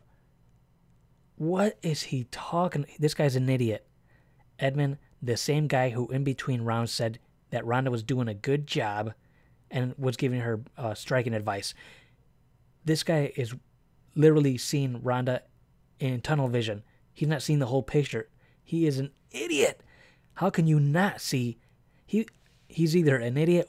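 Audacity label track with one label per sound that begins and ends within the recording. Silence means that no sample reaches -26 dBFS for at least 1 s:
1.410000	11.690000	sound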